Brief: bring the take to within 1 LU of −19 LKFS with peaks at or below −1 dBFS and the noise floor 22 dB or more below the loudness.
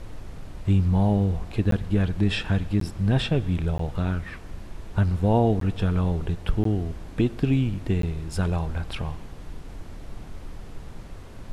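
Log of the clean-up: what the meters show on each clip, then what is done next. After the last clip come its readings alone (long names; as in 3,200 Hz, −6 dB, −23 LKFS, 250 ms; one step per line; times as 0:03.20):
number of dropouts 6; longest dropout 13 ms; background noise floor −40 dBFS; target noise floor −47 dBFS; integrated loudness −25.0 LKFS; sample peak −10.0 dBFS; target loudness −19.0 LKFS
→ repair the gap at 0:01.71/0:02.80/0:03.78/0:05.60/0:06.64/0:08.02, 13 ms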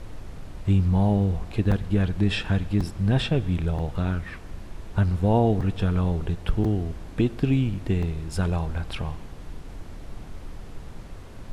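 number of dropouts 0; background noise floor −40 dBFS; target noise floor −47 dBFS
→ noise reduction from a noise print 7 dB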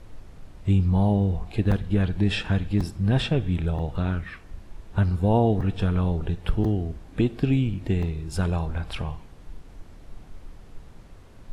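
background noise floor −47 dBFS; integrated loudness −25.0 LKFS; sample peak −10.0 dBFS; target loudness −19.0 LKFS
→ level +6 dB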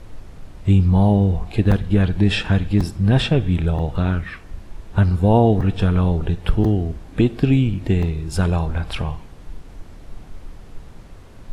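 integrated loudness −19.0 LKFS; sample peak −4.0 dBFS; background noise floor −41 dBFS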